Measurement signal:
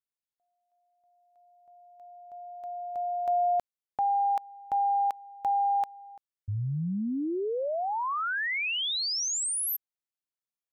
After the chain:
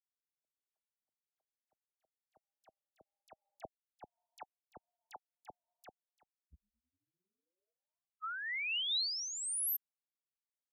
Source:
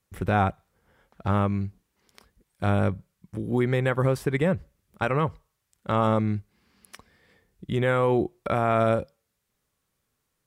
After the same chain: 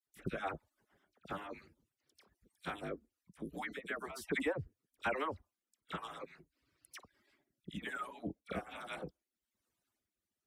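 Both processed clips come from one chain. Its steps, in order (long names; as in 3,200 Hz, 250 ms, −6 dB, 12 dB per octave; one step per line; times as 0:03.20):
harmonic-percussive split with one part muted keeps percussive
high-pass filter 78 Hz 6 dB per octave
dynamic equaliser 440 Hz, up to −3 dB, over −41 dBFS, Q 1.2
rotating-speaker cabinet horn 1.1 Hz
all-pass dispersion lows, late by 54 ms, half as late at 1,700 Hz
amplitude modulation by smooth noise, depth 60%
level −2 dB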